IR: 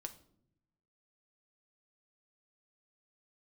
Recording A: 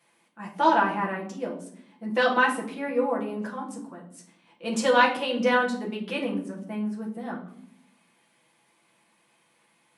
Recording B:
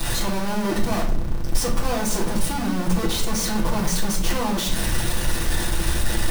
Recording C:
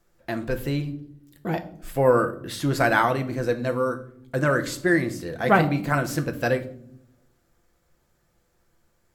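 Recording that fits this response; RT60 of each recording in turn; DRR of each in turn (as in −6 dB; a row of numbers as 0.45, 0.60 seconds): C; 0.70 s, 0.65 s, non-exponential decay; −3.5, −11.0, 6.0 decibels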